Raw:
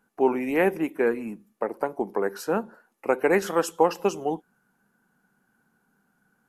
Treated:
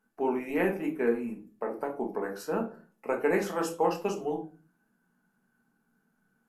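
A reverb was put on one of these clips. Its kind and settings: shoebox room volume 230 m³, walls furnished, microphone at 1.5 m; gain -8 dB

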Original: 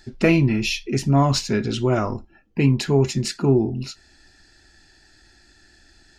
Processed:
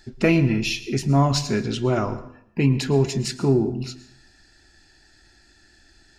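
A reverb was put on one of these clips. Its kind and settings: plate-style reverb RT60 0.67 s, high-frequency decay 0.85×, pre-delay 95 ms, DRR 14 dB; gain -1.5 dB

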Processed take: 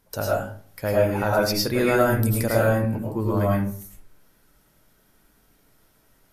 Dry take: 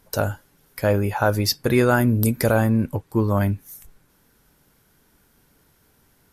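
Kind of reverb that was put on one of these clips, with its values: digital reverb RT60 0.49 s, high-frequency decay 0.5×, pre-delay 65 ms, DRR -5 dB; gain -6.5 dB

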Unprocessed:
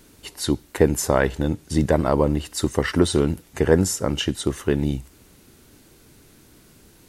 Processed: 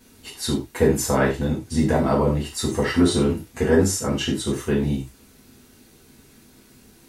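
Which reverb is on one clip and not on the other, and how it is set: non-linear reverb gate 0.13 s falling, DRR -6.5 dB; gain -7 dB

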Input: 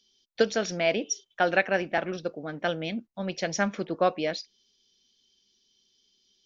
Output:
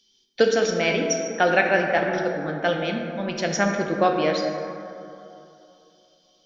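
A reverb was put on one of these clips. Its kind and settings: plate-style reverb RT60 2.9 s, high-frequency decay 0.35×, DRR 1.5 dB; gain +3.5 dB

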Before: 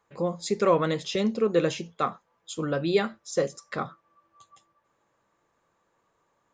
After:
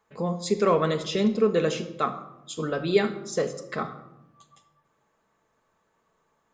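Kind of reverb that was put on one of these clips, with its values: shoebox room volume 3200 m³, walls furnished, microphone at 1.5 m

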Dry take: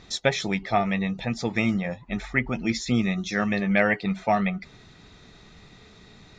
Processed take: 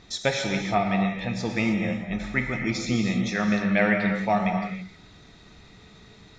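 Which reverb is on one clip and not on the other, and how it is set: non-linear reverb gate 0.34 s flat, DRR 2.5 dB; gain -2 dB

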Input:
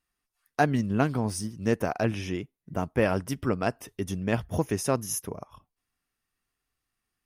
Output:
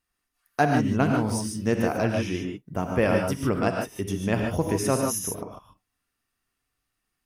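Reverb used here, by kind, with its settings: non-linear reverb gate 0.17 s rising, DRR 2 dB; gain +1 dB

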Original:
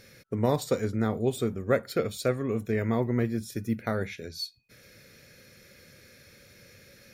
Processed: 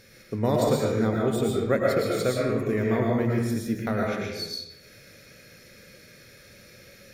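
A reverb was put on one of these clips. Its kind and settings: digital reverb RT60 0.93 s, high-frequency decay 0.75×, pre-delay 75 ms, DRR -2.5 dB

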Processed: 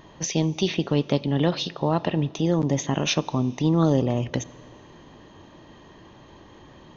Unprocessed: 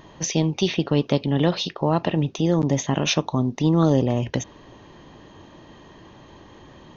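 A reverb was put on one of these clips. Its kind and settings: Schroeder reverb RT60 2.4 s, combs from 28 ms, DRR 20 dB; gain -2 dB

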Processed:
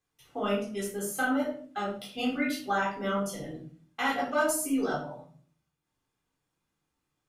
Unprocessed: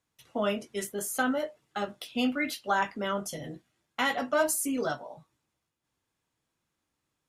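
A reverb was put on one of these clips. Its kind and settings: shoebox room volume 440 m³, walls furnished, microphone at 3.8 m; gain -6.5 dB

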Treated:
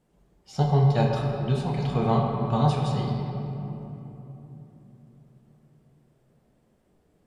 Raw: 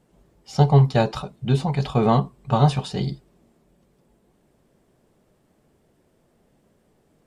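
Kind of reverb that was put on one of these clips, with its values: shoebox room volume 190 m³, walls hard, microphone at 0.48 m; gain -7.5 dB

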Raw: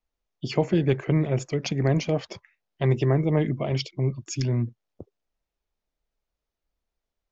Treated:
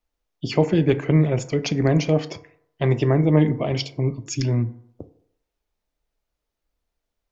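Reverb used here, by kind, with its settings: FDN reverb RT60 0.71 s, low-frequency decay 0.8×, high-frequency decay 0.4×, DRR 10.5 dB; gain +3.5 dB

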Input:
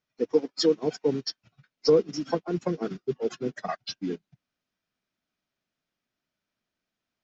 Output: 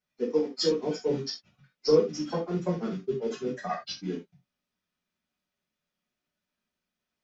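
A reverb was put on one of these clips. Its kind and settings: non-linear reverb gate 0.11 s falling, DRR -4.5 dB; gain -6.5 dB

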